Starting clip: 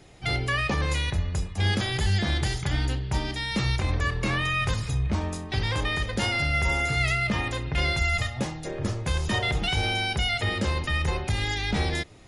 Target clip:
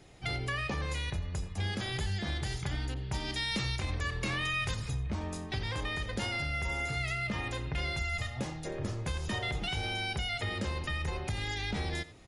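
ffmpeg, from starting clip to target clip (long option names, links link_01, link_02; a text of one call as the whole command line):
ffmpeg -i in.wav -filter_complex "[0:a]acompressor=threshold=-27dB:ratio=3,asplit=2[link_01][link_02];[link_02]adelay=87.46,volume=-17dB,highshelf=frequency=4000:gain=-1.97[link_03];[link_01][link_03]amix=inputs=2:normalize=0,asettb=1/sr,asplit=3[link_04][link_05][link_06];[link_04]atrim=end=2.944[link_07];[link_05]atrim=start=2.94:end=4.75,asetpts=PTS-STARTPTS,afade=type=in:duration=0.004:curve=qsin,afade=type=out:start_time=1.806:duration=0.004:curve=qsin,adynamicequalizer=threshold=0.00562:dfrequency=2000:dqfactor=0.7:tfrequency=2000:tqfactor=0.7:attack=5:release=100:ratio=0.375:range=2.5:mode=boostabove:tftype=highshelf[link_08];[link_06]atrim=start=4.746[link_09];[link_07][link_08]acrossfade=duration=0.004:curve1=hsin:curve2=qsin[link_10];[link_10][link_09]acrossfade=duration=0.004:curve1=qsin:curve2=hsin,volume=-4.5dB" out.wav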